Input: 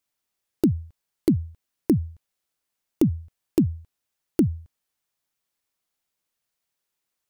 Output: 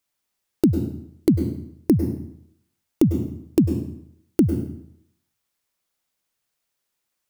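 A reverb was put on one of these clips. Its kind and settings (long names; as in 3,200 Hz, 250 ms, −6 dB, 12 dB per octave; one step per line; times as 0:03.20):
dense smooth reverb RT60 0.7 s, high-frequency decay 0.85×, pre-delay 90 ms, DRR 6.5 dB
level +2.5 dB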